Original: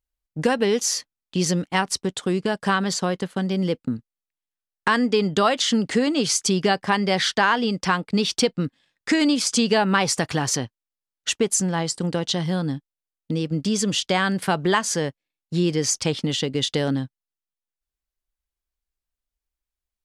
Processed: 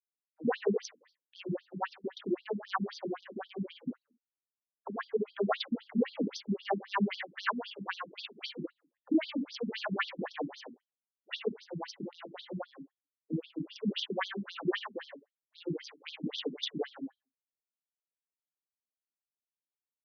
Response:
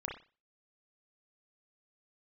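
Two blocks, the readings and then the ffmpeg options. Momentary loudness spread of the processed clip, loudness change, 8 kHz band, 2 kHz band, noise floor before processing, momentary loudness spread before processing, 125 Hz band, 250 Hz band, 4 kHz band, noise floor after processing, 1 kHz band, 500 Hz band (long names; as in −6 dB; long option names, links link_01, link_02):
13 LU, −14.0 dB, below −30 dB, −14.5 dB, below −85 dBFS, 9 LU, −17.5 dB, −13.0 dB, −16.0 dB, below −85 dBFS, −14.5 dB, −12.5 dB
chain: -filter_complex "[0:a]adynamicsmooth=sensitivity=1.5:basefreq=2100[link_01];[1:a]atrim=start_sample=2205,asetrate=52920,aresample=44100[link_02];[link_01][link_02]afir=irnorm=-1:irlink=0,afftfilt=real='re*between(b*sr/1024,230*pow(4600/230,0.5+0.5*sin(2*PI*3.8*pts/sr))/1.41,230*pow(4600/230,0.5+0.5*sin(2*PI*3.8*pts/sr))*1.41)':imag='im*between(b*sr/1024,230*pow(4600/230,0.5+0.5*sin(2*PI*3.8*pts/sr))/1.41,230*pow(4600/230,0.5+0.5*sin(2*PI*3.8*pts/sr))*1.41)':win_size=1024:overlap=0.75,volume=-4.5dB"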